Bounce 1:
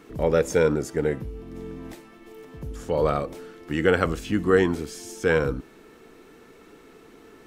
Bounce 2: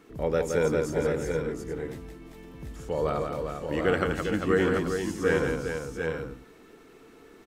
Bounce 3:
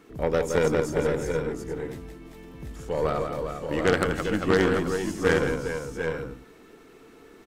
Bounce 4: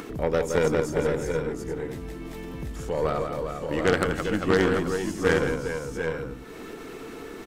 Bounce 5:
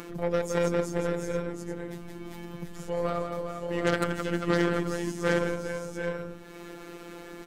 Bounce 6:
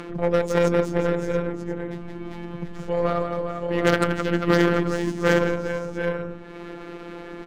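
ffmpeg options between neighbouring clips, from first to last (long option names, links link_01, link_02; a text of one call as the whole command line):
ffmpeg -i in.wav -af "aecho=1:1:170|399|713|738|834:0.562|0.473|0.237|0.531|0.237,volume=-5.5dB" out.wav
ffmpeg -i in.wav -af "aeval=exprs='0.355*(cos(1*acos(clip(val(0)/0.355,-1,1)))-cos(1*PI/2))+0.1*(cos(6*acos(clip(val(0)/0.355,-1,1)))-cos(6*PI/2))+0.0794*(cos(8*acos(clip(val(0)/0.355,-1,1)))-cos(8*PI/2))':channel_layout=same,volume=1.5dB" out.wav
ffmpeg -i in.wav -af "acompressor=mode=upward:threshold=-27dB:ratio=2.5" out.wav
ffmpeg -i in.wav -af "afftfilt=real='hypot(re,im)*cos(PI*b)':imag='0':win_size=1024:overlap=0.75" out.wav
ffmpeg -i in.wav -af "adynamicsmooth=sensitivity=6.5:basefreq=2500,volume=6.5dB" out.wav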